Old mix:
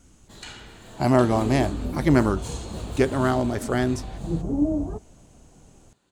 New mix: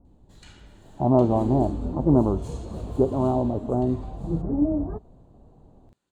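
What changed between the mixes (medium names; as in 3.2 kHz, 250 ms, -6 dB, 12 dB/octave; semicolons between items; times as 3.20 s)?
speech: add steep low-pass 1 kHz 48 dB/octave; first sound -11.5 dB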